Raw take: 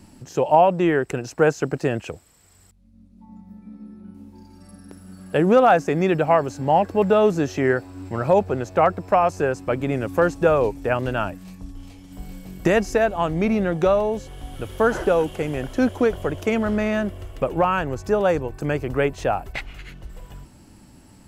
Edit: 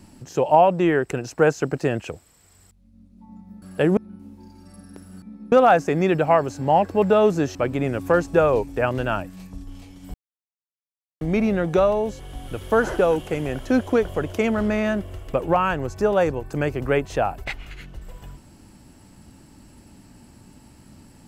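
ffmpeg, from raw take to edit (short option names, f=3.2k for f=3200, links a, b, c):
-filter_complex "[0:a]asplit=8[a][b][c][d][e][f][g][h];[a]atrim=end=3.622[i];[b]atrim=start=5.168:end=5.522[j];[c]atrim=start=3.918:end=5.172[k];[d]atrim=start=3.618:end=3.922[l];[e]atrim=start=5.518:end=7.552[m];[f]atrim=start=9.628:end=12.22,asetpts=PTS-STARTPTS,afade=t=out:st=2.588:d=0.004:c=hsin[n];[g]atrim=start=12.22:end=13.29,asetpts=PTS-STARTPTS,volume=0[o];[h]atrim=start=13.29,asetpts=PTS-STARTPTS,afade=t=in:d=0.004:c=hsin[p];[i][j]acrossfade=d=0.004:c1=hsin:c2=hsin[q];[q][k]acrossfade=d=0.004:c1=hsin:c2=hsin[r];[r][l]acrossfade=d=0.004:c1=hsin:c2=hsin[s];[s][m]acrossfade=d=0.004:c1=hsin:c2=hsin[t];[n][o][p]concat=n=3:v=0:a=1[u];[t][u]acrossfade=d=0.004:c1=hsin:c2=hsin"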